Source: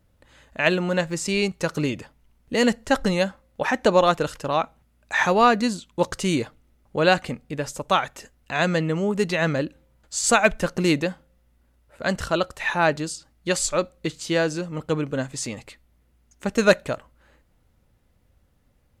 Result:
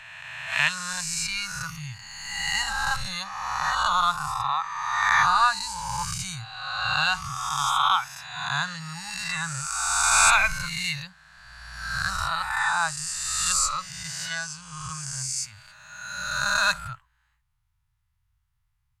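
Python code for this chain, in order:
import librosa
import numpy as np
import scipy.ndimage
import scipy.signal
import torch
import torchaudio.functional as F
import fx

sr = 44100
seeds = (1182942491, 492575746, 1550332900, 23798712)

y = fx.spec_swells(x, sr, rise_s=2.64)
y = fx.noise_reduce_blind(y, sr, reduce_db=11)
y = scipy.signal.sosfilt(scipy.signal.ellip(3, 1.0, 60, [130.0, 950.0], 'bandstop', fs=sr, output='sos'), y)
y = y * 10.0 ** (-2.5 / 20.0)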